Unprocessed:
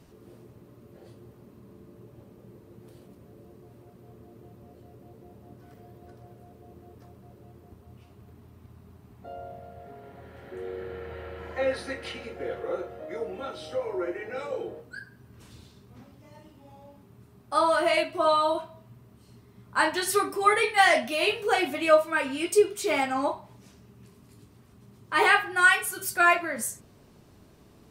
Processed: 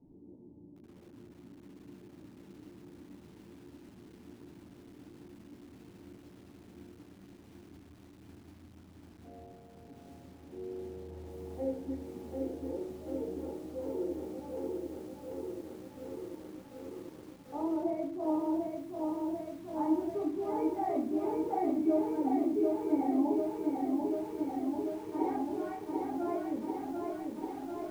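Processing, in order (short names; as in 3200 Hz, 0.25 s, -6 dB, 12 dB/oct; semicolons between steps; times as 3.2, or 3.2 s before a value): vocal tract filter u; reverb RT60 0.35 s, pre-delay 4 ms, DRR -1.5 dB; lo-fi delay 0.741 s, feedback 80%, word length 10-bit, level -3.5 dB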